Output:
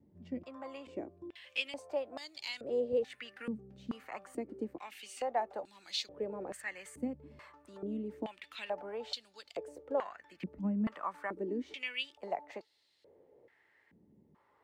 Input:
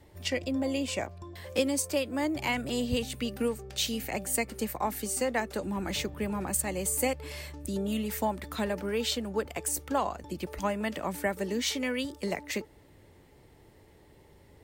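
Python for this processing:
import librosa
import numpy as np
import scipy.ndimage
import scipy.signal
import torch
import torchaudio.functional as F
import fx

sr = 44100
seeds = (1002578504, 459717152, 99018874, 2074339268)

y = fx.filter_held_bandpass(x, sr, hz=2.3, low_hz=210.0, high_hz=4200.0)
y = F.gain(torch.from_numpy(y), 3.5).numpy()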